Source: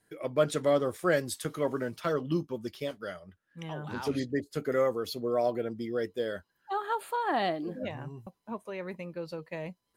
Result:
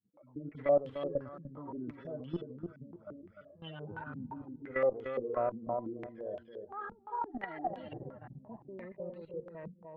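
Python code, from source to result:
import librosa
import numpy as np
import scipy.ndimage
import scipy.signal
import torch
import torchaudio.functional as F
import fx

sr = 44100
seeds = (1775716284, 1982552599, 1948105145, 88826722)

p1 = fx.hpss_only(x, sr, part='harmonic')
p2 = fx.low_shelf(p1, sr, hz=410.0, db=-5.5)
p3 = p2 + fx.echo_single(p2, sr, ms=604, db=-22.5, dry=0)
p4 = fx.level_steps(p3, sr, step_db=15)
p5 = fx.low_shelf(p4, sr, hz=76.0, db=8.5)
p6 = fx.echo_feedback(p5, sr, ms=298, feedback_pct=30, wet_db=-5.5)
p7 = fx.cheby_harmonics(p6, sr, harmonics=(6,), levels_db=(-27,), full_scale_db=-20.0)
p8 = fx.filter_held_lowpass(p7, sr, hz=5.8, low_hz=210.0, high_hz=3000.0)
y = p8 * librosa.db_to_amplitude(-2.5)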